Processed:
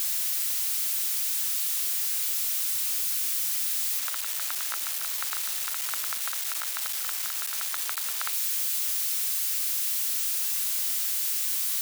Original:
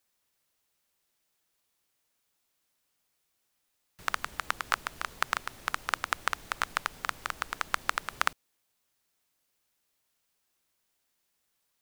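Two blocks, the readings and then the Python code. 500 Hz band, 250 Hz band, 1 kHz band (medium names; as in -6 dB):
-7.0 dB, under -10 dB, -8.0 dB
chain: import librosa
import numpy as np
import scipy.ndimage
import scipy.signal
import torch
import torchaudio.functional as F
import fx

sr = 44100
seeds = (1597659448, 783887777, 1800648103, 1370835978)

y = x + 0.5 * 10.0 ** (-10.0 / 20.0) * np.diff(np.sign(x), prepend=np.sign(x[:1]))
y = fx.highpass(y, sr, hz=640.0, slope=6)
y = fx.high_shelf(y, sr, hz=5100.0, db=-7.0)
y = F.gain(torch.from_numpy(y), -8.0).numpy()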